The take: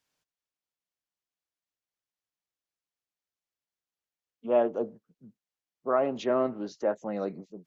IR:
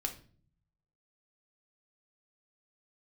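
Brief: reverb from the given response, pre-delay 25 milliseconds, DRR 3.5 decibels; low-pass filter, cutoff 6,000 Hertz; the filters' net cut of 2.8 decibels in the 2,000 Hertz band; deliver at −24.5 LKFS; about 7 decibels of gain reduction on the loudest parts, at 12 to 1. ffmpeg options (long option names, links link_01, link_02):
-filter_complex "[0:a]lowpass=6000,equalizer=frequency=2000:width_type=o:gain=-4,acompressor=threshold=-26dB:ratio=12,asplit=2[link_01][link_02];[1:a]atrim=start_sample=2205,adelay=25[link_03];[link_02][link_03]afir=irnorm=-1:irlink=0,volume=-4.5dB[link_04];[link_01][link_04]amix=inputs=2:normalize=0,volume=8dB"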